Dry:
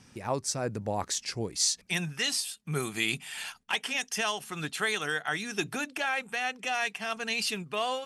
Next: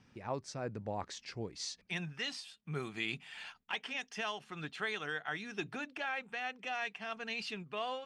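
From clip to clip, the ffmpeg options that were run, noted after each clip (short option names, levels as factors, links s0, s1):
-af "lowpass=3800,volume=0.422"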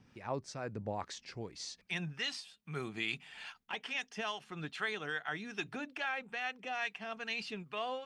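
-filter_complex "[0:a]acrossover=split=800[s0][s1];[s0]aeval=exprs='val(0)*(1-0.5/2+0.5/2*cos(2*PI*2.4*n/s))':c=same[s2];[s1]aeval=exprs='val(0)*(1-0.5/2-0.5/2*cos(2*PI*2.4*n/s))':c=same[s3];[s2][s3]amix=inputs=2:normalize=0,volume=1.33"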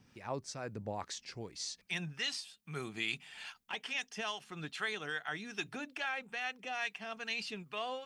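-af "highshelf=f=4800:g=9,volume=0.841"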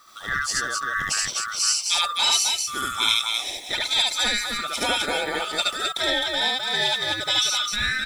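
-af "afftfilt=real='real(if(lt(b,960),b+48*(1-2*mod(floor(b/48),2)),b),0)':imag='imag(if(lt(b,960),b+48*(1-2*mod(floor(b/48),2)),b),0)':win_size=2048:overlap=0.75,aecho=1:1:72.89|259.5:1|0.708,crystalizer=i=3:c=0,volume=2.66"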